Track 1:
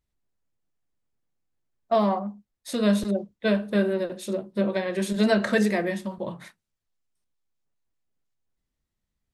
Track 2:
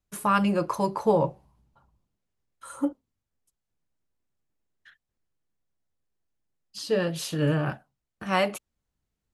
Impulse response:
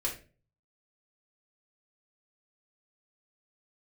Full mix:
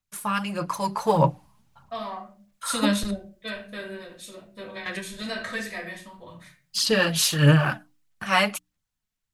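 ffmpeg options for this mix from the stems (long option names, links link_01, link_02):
-filter_complex "[0:a]bandreject=frequency=550:width=12,volume=-7.5dB,asplit=2[link_01][link_02];[link_02]volume=-10dB[link_03];[1:a]highpass=120,aphaser=in_gain=1:out_gain=1:delay=4.8:decay=0.46:speed=1.6:type=sinusoidal,volume=1dB,asplit=2[link_04][link_05];[link_05]apad=whole_len=411707[link_06];[link_01][link_06]sidechaingate=range=-33dB:threshold=-59dB:ratio=16:detection=peak[link_07];[2:a]atrim=start_sample=2205[link_08];[link_03][link_08]afir=irnorm=-1:irlink=0[link_09];[link_07][link_04][link_09]amix=inputs=3:normalize=0,equalizer=frequency=390:width=0.65:gain=-13.5,bandreject=frequency=60:width_type=h:width=6,bandreject=frequency=120:width_type=h:width=6,bandreject=frequency=180:width_type=h:width=6,bandreject=frequency=240:width_type=h:width=6,bandreject=frequency=300:width_type=h:width=6,dynaudnorm=framelen=120:gausssize=17:maxgain=12dB"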